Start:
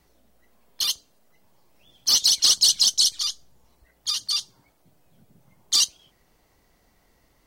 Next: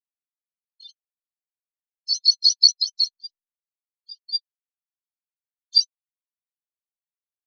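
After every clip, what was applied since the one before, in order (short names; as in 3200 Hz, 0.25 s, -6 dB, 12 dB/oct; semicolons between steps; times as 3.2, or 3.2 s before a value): spectral expander 4:1; gain +4 dB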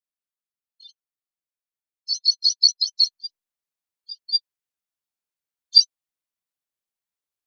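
vocal rider 0.5 s; gain +1 dB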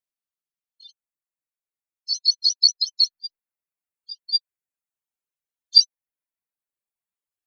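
reverb removal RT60 1.5 s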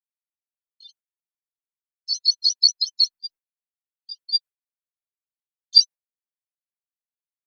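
gate with hold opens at -46 dBFS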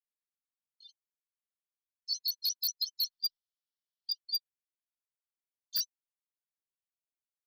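spectral gain 3.12–4.13, 2900–5800 Hz +12 dB; wavefolder -15 dBFS; gain -9 dB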